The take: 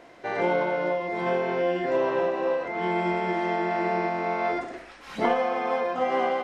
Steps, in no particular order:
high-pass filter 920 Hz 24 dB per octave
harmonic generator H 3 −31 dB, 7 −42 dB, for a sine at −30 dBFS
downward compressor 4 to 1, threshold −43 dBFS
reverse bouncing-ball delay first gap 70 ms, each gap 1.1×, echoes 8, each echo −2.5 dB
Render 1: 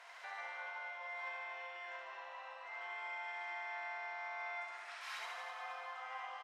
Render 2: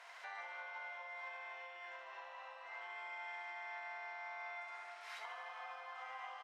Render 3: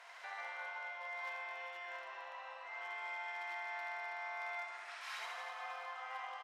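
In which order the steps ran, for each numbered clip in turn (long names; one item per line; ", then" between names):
downward compressor, then high-pass filter, then harmonic generator, then reverse bouncing-ball delay
reverse bouncing-ball delay, then downward compressor, then high-pass filter, then harmonic generator
downward compressor, then reverse bouncing-ball delay, then harmonic generator, then high-pass filter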